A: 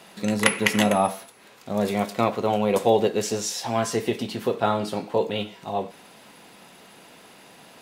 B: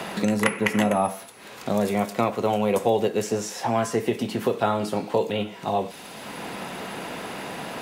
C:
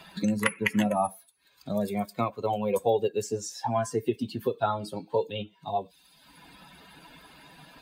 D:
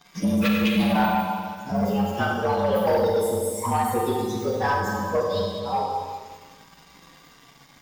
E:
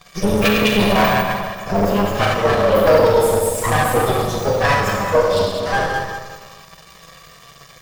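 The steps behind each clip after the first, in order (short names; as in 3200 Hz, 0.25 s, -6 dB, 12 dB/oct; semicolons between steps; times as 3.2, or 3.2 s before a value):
dynamic EQ 4000 Hz, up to -6 dB, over -45 dBFS, Q 1.6; three-band squash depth 70%
per-bin expansion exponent 2
inharmonic rescaling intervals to 112%; Schroeder reverb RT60 1.9 s, combs from 33 ms, DRR -1.5 dB; sample leveller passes 2; gain -2 dB
minimum comb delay 1.7 ms; shoebox room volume 2900 m³, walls furnished, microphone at 0.64 m; gain +9 dB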